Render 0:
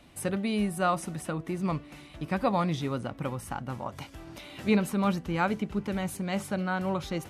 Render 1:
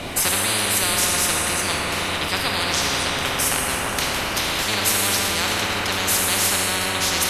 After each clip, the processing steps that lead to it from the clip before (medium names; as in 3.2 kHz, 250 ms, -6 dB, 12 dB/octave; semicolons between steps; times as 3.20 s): octave divider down 1 oct, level +2 dB; plate-style reverb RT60 2.8 s, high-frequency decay 0.65×, DRR -1 dB; spectrum-flattening compressor 10:1; trim +5.5 dB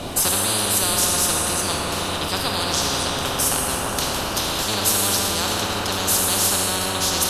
peaking EQ 2.1 kHz -11.5 dB 0.69 oct; trim +1.5 dB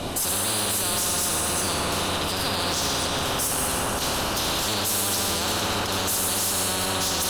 peak limiter -13 dBFS, peak gain reduction 9 dB; hard clipper -20.5 dBFS, distortion -13 dB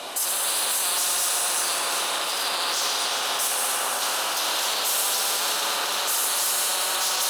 backward echo that repeats 199 ms, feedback 71%, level -7 dB; high-pass 680 Hz 12 dB/octave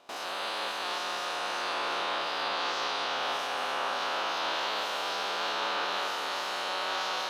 reverse spectral sustain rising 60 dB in 1.42 s; gate with hold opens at -15 dBFS; distance through air 260 m; trim -4 dB